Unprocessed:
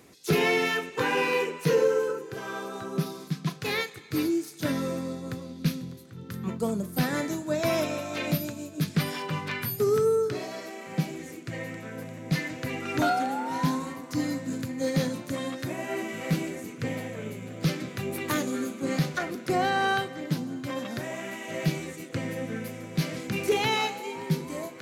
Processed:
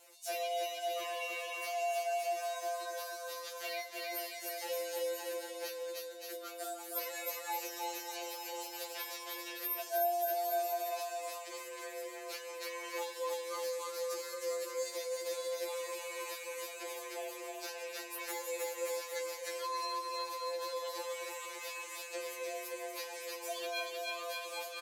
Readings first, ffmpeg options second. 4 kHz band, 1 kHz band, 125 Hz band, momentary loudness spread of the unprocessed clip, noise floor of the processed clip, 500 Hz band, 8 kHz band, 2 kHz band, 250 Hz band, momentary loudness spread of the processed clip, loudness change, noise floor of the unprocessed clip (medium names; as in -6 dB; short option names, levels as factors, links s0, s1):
-6.5 dB, -7.0 dB, under -40 dB, 11 LU, -47 dBFS, -8.5 dB, -2.0 dB, -11.0 dB, -25.5 dB, 7 LU, -9.5 dB, -44 dBFS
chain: -filter_complex "[0:a]lowshelf=f=76:g=-9.5,aecho=1:1:310|573.5|797.5|987.9|1150:0.631|0.398|0.251|0.158|0.1,acrossover=split=130|390|2400[s0][s1][s2][s3];[s0]acompressor=threshold=0.00447:ratio=4[s4];[s1]acompressor=threshold=0.0178:ratio=4[s5];[s2]acompressor=threshold=0.0126:ratio=4[s6];[s3]acompressor=threshold=0.00708:ratio=4[s7];[s4][s5][s6][s7]amix=inputs=4:normalize=0,afreqshift=250,highshelf=f=3600:g=11.5,afftfilt=real='re*2.83*eq(mod(b,8),0)':imag='im*2.83*eq(mod(b,8),0)':win_size=2048:overlap=0.75,volume=0.447"